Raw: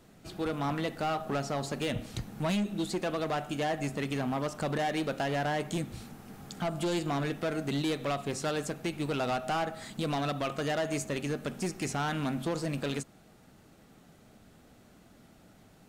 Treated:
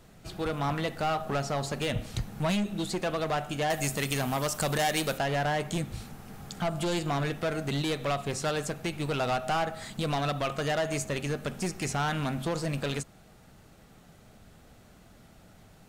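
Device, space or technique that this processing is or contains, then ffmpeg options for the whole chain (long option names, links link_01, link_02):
low shelf boost with a cut just above: -filter_complex "[0:a]asettb=1/sr,asplit=3[link_01][link_02][link_03];[link_01]atrim=end=3.704[link_04];[link_02]atrim=start=3.7:end=5.18,asetpts=PTS-STARTPTS,afade=type=in:duration=0.004:curve=qsin,afade=type=out:start_time=1.476:duration=0.004:curve=qsin,aemphasis=mode=production:type=75kf[link_05];[link_03]atrim=start=5.176[link_06];[link_04][link_05]acrossfade=duration=0.004:curve1=hsin:curve2=qsin[link_07];[link_07][link_06]acrossfade=duration=0.004:curve1=qsin:curve2=hsin,lowshelf=frequency=83:gain=6.5,equalizer=frequency=280:width_type=o:width=0.96:gain=-5.5,volume=3dB"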